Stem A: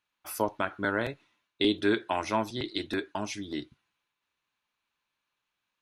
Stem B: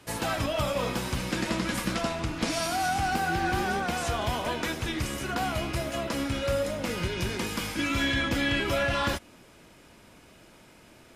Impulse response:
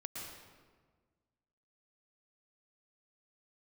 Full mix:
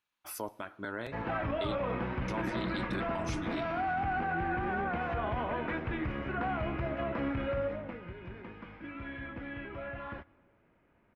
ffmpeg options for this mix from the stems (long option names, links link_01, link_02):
-filter_complex "[0:a]alimiter=limit=-19.5dB:level=0:latency=1:release=496,volume=-4dB,asplit=3[link_01][link_02][link_03];[link_01]atrim=end=1.75,asetpts=PTS-STARTPTS,afade=type=out:start_time=1.746:duration=0.004:curve=hsin[link_04];[link_02]atrim=start=1.75:end=2.28,asetpts=PTS-STARTPTS,volume=0[link_05];[link_03]atrim=start=2.28,asetpts=PTS-STARTPTS,afade=type=in:duration=0.004:curve=hsin[link_06];[link_04][link_05][link_06]concat=n=3:v=0:a=1,asplit=2[link_07][link_08];[link_08]volume=-21dB[link_09];[1:a]lowpass=frequency=2200:width=0.5412,lowpass=frequency=2200:width=1.3066,adelay=1050,volume=-2.5dB,afade=type=out:start_time=7.47:duration=0.54:silence=0.251189,asplit=2[link_10][link_11];[link_11]volume=-21.5dB[link_12];[2:a]atrim=start_sample=2205[link_13];[link_09][link_12]amix=inputs=2:normalize=0[link_14];[link_14][link_13]afir=irnorm=-1:irlink=0[link_15];[link_07][link_10][link_15]amix=inputs=3:normalize=0,alimiter=level_in=1dB:limit=-24dB:level=0:latency=1:release=20,volume=-1dB"